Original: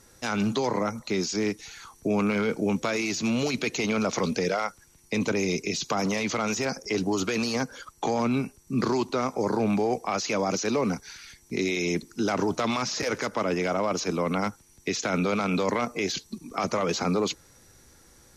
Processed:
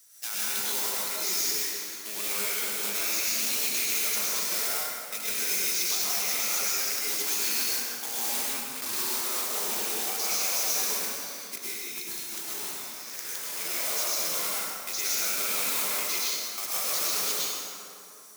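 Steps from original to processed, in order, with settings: block-companded coder 3-bit; differentiator; 11.53–13.54 s: compressor with a negative ratio -41 dBFS, ratio -0.5; plate-style reverb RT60 2.7 s, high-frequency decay 0.55×, pre-delay 90 ms, DRR -8 dB

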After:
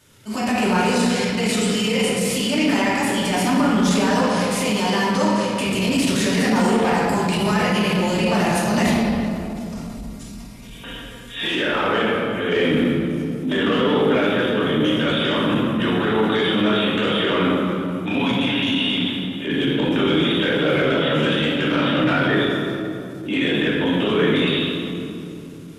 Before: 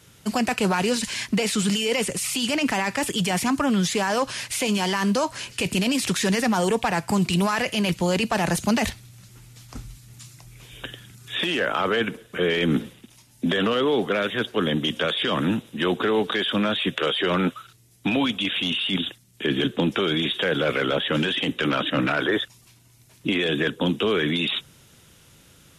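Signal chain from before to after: 8.81–11.44 s: comb 4.3 ms, depth 72%; reverberation RT60 2.9 s, pre-delay 3 ms, DRR -8 dB; transient shaper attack -7 dB, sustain +1 dB; trim -4.5 dB

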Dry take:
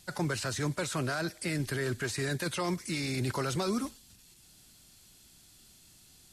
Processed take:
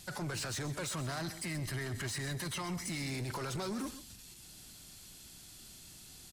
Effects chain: 0.90–3.11 s: comb 1 ms, depth 52%; peak limiter -31.5 dBFS, peak gain reduction 11.5 dB; saturation -39 dBFS, distortion -12 dB; delay 131 ms -13.5 dB; trim +5 dB

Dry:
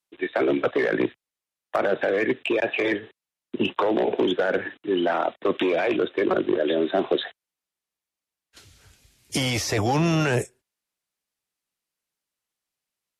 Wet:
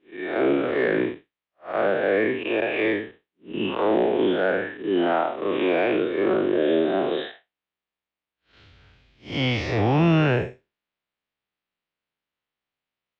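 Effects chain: spectral blur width 145 ms; low-pass 3.6 kHz 24 dB/octave; trim +4 dB

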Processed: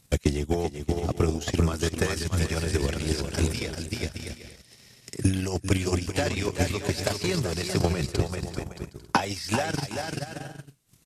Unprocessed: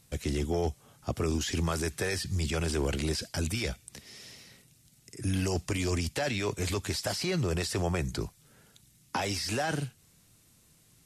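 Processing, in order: bouncing-ball echo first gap 390 ms, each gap 0.6×, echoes 5; transient shaper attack +12 dB, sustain -12 dB

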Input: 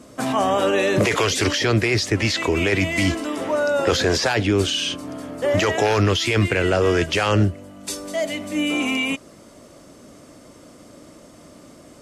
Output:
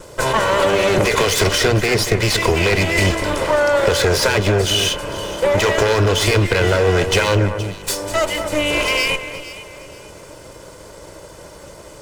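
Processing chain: comb filter that takes the minimum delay 2 ms; compression, threshold -21 dBFS, peak gain reduction 7.5 dB; echo whose repeats swap between lows and highs 235 ms, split 2.2 kHz, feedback 52%, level -9 dB; trim +8.5 dB

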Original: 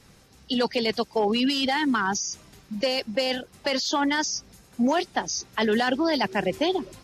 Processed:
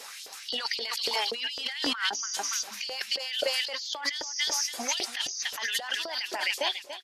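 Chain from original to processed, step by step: fade out at the end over 1.25 s; treble shelf 2 kHz +9.5 dB; LFO high-pass saw up 3.8 Hz 500–4900 Hz; 1.81–2.27 s: treble shelf 6.9 kHz -9 dB; feedback delay 285 ms, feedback 21%, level -15.5 dB; peak limiter -11.5 dBFS, peak gain reduction 7 dB; compressor with a negative ratio -32 dBFS, ratio -1

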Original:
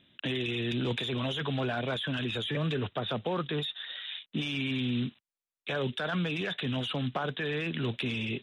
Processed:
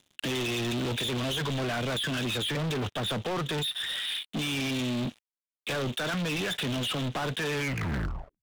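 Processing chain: tape stop on the ending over 0.90 s; treble shelf 7.1 kHz +5 dB; waveshaping leveller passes 5; trim -8 dB

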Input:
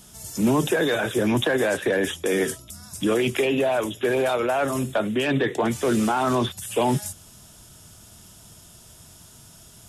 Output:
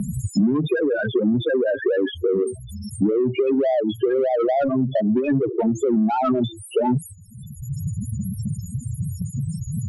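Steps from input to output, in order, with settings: treble shelf 3.4 kHz +5.5 dB; de-hum 167.8 Hz, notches 2; on a send: feedback echo behind a high-pass 327 ms, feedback 82%, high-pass 3.4 kHz, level -22 dB; on the sum: loudest bins only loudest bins 4; in parallel at -5 dB: saturation -25 dBFS, distortion -11 dB; on the sum: peaking EQ 180 Hz +3.5 dB 2.3 oct; three bands compressed up and down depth 100%

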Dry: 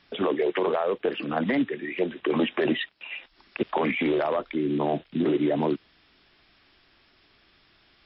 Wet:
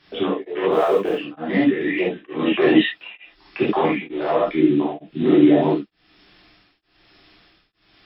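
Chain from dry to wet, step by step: 0.71–1.15 s: companding laws mixed up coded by A; 1.81–3.16 s: upward compressor, threshold -25 dBFS; gated-style reverb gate 110 ms flat, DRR -7.5 dB; tremolo of two beating tones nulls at 1.1 Hz

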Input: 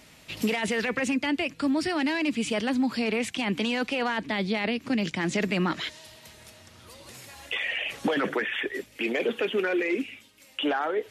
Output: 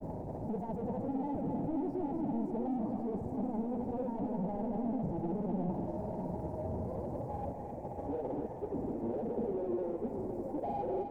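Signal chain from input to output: one-bit comparator; elliptic low-pass 860 Hz, stop band 40 dB; in parallel at -10 dB: saturation -37 dBFS, distortion -10 dB; on the sum: granulator, pitch spread up and down by 0 st; two-band feedback delay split 480 Hz, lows 646 ms, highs 261 ms, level -6 dB; trim -5 dB

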